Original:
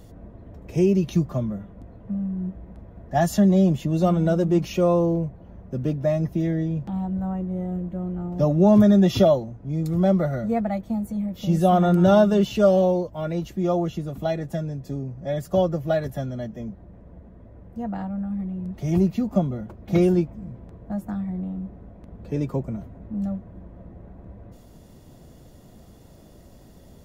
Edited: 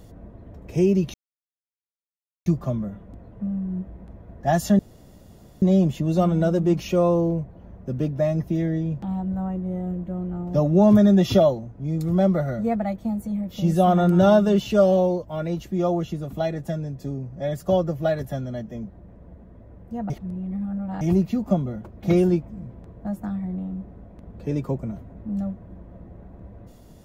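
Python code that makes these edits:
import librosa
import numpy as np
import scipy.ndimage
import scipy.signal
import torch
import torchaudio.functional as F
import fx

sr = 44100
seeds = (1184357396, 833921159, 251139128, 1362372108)

y = fx.edit(x, sr, fx.insert_silence(at_s=1.14, length_s=1.32),
    fx.insert_room_tone(at_s=3.47, length_s=0.83),
    fx.reverse_span(start_s=17.95, length_s=0.91), tone=tone)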